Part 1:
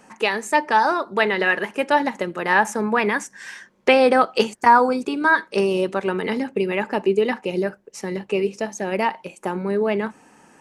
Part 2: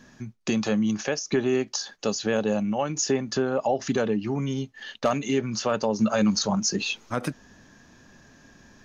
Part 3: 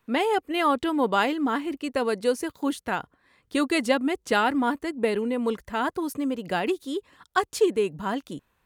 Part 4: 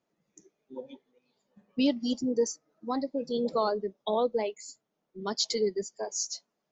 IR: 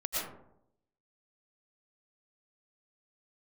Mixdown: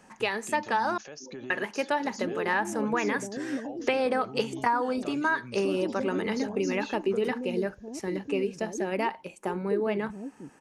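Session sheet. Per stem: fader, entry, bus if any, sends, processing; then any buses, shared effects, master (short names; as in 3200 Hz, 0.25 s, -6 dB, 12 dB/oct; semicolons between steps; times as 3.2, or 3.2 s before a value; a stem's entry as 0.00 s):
-6.0 dB, 0.00 s, muted 0.98–1.5, no send, dry
-12.5 dB, 0.00 s, no send, limiter -20.5 dBFS, peak gain reduction 7 dB
-7.5 dB, 2.10 s, no send, inverse Chebyshev low-pass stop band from 1300 Hz, stop band 50 dB
-3.5 dB, 0.50 s, no send, compressor, threshold -35 dBFS, peak gain reduction 13.5 dB; polynomial smoothing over 25 samples; limiter -36 dBFS, peak gain reduction 11.5 dB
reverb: off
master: compressor 6:1, threshold -22 dBFS, peak gain reduction 8 dB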